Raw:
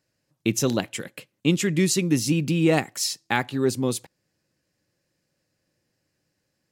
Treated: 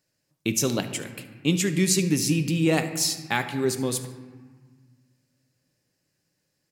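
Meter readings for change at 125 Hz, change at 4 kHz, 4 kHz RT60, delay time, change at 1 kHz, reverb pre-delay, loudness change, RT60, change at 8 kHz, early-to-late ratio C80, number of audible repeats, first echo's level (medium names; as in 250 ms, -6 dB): -1.0 dB, +1.0 dB, 1.0 s, 73 ms, -2.0 dB, 5 ms, -1.0 dB, 1.5 s, +2.5 dB, 11.5 dB, 1, -18.0 dB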